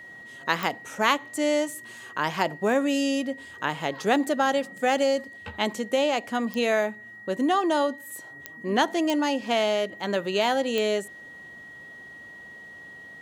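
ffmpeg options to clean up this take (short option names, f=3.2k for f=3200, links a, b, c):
-af "adeclick=t=4,bandreject=f=1.9k:w=30"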